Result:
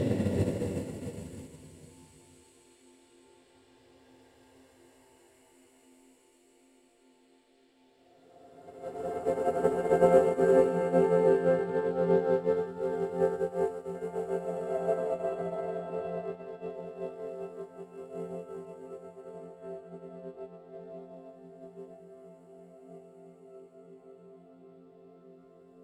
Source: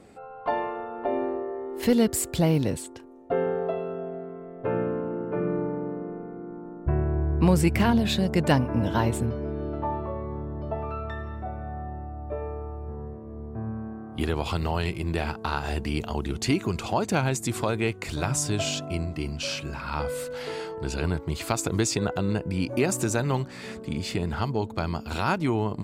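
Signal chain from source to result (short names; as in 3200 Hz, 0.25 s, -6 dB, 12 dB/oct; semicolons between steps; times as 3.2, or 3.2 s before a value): high shelf 2300 Hz -9 dB; thin delay 0.285 s, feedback 72%, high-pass 1500 Hz, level -11 dB; Paulstretch 15×, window 0.25 s, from 2.68; high shelf 11000 Hz -6 dB; upward expander 2.5:1, over -35 dBFS; gain +5 dB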